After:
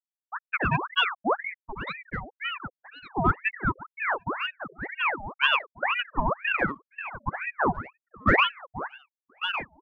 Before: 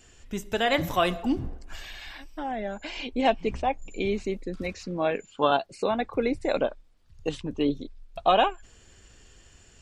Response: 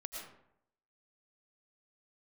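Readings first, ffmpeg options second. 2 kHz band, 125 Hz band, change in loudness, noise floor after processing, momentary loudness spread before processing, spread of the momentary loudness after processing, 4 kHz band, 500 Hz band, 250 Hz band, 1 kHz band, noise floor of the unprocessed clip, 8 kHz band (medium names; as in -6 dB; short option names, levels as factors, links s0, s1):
+8.5 dB, +4.0 dB, 0.0 dB, under -85 dBFS, 14 LU, 14 LU, +3.0 dB, -7.5 dB, -4.5 dB, 0.0 dB, -56 dBFS, under -20 dB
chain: -af "afftfilt=real='re*gte(hypot(re,im),0.282)':imag='im*gte(hypot(re,im),0.282)':win_size=1024:overlap=0.75,lowpass=f=6000:t=q:w=12,aeval=exprs='0.316*(cos(1*acos(clip(val(0)/0.316,-1,1)))-cos(1*PI/2))+0.00891*(cos(2*acos(clip(val(0)/0.316,-1,1)))-cos(2*PI/2))+0.00355*(cos(8*acos(clip(val(0)/0.316,-1,1)))-cos(8*PI/2))':c=same,aecho=1:1:1156|2312|3468:0.316|0.0791|0.0198,aeval=exprs='val(0)*sin(2*PI*1300*n/s+1300*0.7/2*sin(2*PI*2*n/s))':c=same,volume=1.58"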